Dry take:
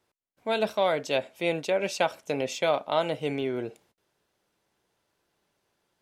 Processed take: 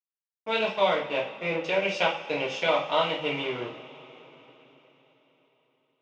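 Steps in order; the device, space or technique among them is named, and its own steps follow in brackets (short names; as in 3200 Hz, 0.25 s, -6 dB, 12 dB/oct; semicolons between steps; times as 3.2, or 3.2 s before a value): 0.94–1.64 Bessel low-pass 1700 Hz; blown loudspeaker (crossover distortion -40.5 dBFS; speaker cabinet 180–5100 Hz, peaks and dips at 250 Hz -7 dB, 380 Hz -9 dB, 680 Hz -9 dB, 1600 Hz -6 dB, 2800 Hz +6 dB, 4200 Hz -9 dB); two-slope reverb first 0.37 s, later 4.3 s, from -22 dB, DRR -5.5 dB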